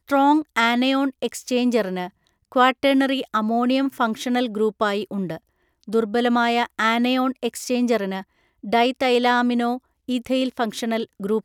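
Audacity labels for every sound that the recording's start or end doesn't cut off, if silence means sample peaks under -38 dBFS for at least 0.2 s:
2.520000	5.380000	sound
5.830000	8.220000	sound
8.640000	9.780000	sound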